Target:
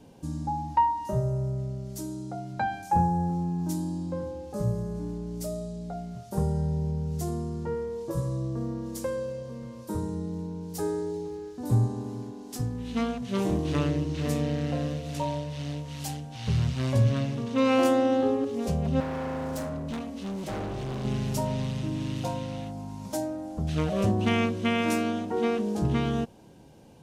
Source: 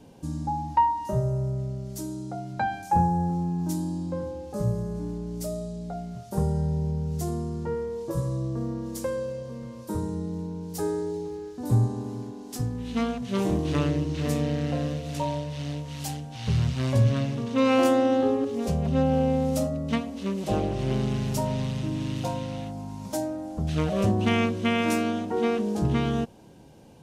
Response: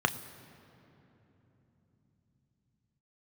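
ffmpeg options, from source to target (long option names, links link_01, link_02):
-filter_complex "[0:a]asettb=1/sr,asplit=3[link_01][link_02][link_03];[link_01]atrim=end=19.004[link_04];[link_02]atrim=start=19:end=21.05,asetpts=PTS-STARTPTS,afade=type=in:duration=0.004:curve=qsin,afade=type=out:start_time=2.046:duration=0.004:curve=qsin,volume=29dB,asoftclip=hard,volume=-29dB[link_05];[link_03]atrim=start=21.046[link_06];[link_04][link_05]acrossfade=duration=0.004:curve1=hsin:curve2=qsin[link_07];[link_07][link_06]acrossfade=duration=0.004:curve1=qsin:curve2=hsin,volume=-1.5dB"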